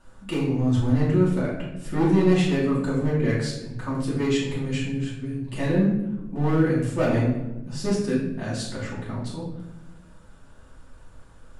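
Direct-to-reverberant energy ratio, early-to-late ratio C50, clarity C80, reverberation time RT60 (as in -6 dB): -8.5 dB, 3.0 dB, 6.0 dB, 1.0 s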